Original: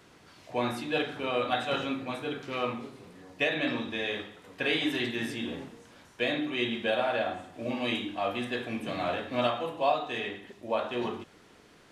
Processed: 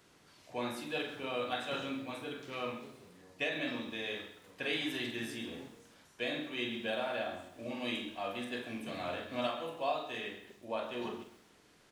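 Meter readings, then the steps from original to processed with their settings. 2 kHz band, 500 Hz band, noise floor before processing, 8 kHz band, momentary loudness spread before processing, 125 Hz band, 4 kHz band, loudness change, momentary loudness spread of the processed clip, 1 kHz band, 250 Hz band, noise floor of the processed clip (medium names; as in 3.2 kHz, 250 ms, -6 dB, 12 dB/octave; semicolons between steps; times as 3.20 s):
-6.5 dB, -7.5 dB, -57 dBFS, -2.5 dB, 10 LU, -8.5 dB, -5.5 dB, -7.0 dB, 10 LU, -8.0 dB, -7.5 dB, -64 dBFS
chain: treble shelf 4.9 kHz +7 dB; doubling 45 ms -8 dB; bit-crushed delay 130 ms, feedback 35%, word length 8-bit, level -13.5 dB; trim -8.5 dB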